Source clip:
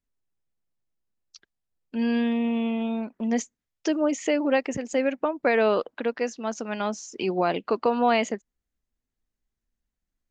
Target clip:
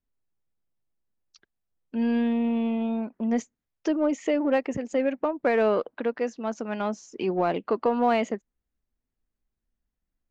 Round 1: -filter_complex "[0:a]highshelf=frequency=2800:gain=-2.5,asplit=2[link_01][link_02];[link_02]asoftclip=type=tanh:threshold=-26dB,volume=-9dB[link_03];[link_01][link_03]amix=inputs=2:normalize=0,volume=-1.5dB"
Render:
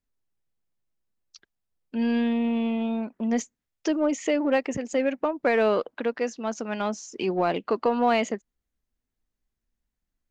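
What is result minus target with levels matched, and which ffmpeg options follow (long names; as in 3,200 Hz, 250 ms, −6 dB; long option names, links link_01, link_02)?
4,000 Hz band +4.5 dB
-filter_complex "[0:a]highshelf=frequency=2800:gain=-11.5,asplit=2[link_01][link_02];[link_02]asoftclip=type=tanh:threshold=-26dB,volume=-9dB[link_03];[link_01][link_03]amix=inputs=2:normalize=0,volume=-1.5dB"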